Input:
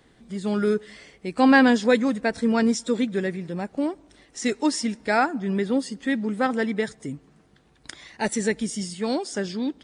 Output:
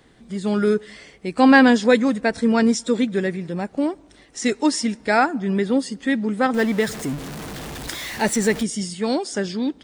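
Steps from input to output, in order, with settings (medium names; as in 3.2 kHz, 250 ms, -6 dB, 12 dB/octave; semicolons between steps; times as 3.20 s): 6.54–8.63 s: jump at every zero crossing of -31 dBFS; trim +3.5 dB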